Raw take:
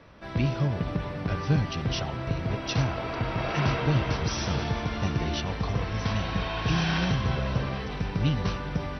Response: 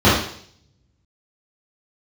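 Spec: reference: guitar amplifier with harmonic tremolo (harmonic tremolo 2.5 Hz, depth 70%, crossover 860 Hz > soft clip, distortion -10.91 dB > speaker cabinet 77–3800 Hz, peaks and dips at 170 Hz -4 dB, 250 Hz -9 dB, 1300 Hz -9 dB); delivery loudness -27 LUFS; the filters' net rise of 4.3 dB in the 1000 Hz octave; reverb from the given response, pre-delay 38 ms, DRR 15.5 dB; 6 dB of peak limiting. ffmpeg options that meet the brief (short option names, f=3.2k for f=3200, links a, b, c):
-filter_complex "[0:a]equalizer=f=1k:t=o:g=8,alimiter=limit=-17.5dB:level=0:latency=1,asplit=2[a][b];[1:a]atrim=start_sample=2205,adelay=38[c];[b][c]afir=irnorm=-1:irlink=0,volume=-41.5dB[d];[a][d]amix=inputs=2:normalize=0,acrossover=split=860[e][f];[e]aeval=exprs='val(0)*(1-0.7/2+0.7/2*cos(2*PI*2.5*n/s))':c=same[g];[f]aeval=exprs='val(0)*(1-0.7/2-0.7/2*cos(2*PI*2.5*n/s))':c=same[h];[g][h]amix=inputs=2:normalize=0,asoftclip=threshold=-29dB,highpass=77,equalizer=f=170:t=q:w=4:g=-4,equalizer=f=250:t=q:w=4:g=-9,equalizer=f=1.3k:t=q:w=4:g=-9,lowpass=f=3.8k:w=0.5412,lowpass=f=3.8k:w=1.3066,volume=10dB"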